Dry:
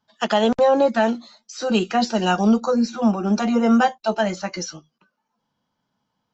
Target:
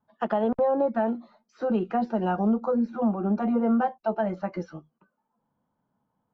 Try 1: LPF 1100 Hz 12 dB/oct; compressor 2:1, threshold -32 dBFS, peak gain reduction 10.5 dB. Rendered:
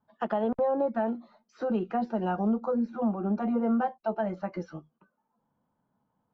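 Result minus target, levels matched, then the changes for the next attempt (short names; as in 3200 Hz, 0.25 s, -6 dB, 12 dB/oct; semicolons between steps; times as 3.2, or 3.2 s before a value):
compressor: peak gain reduction +3 dB
change: compressor 2:1, threshold -25.5 dBFS, peak gain reduction 7.5 dB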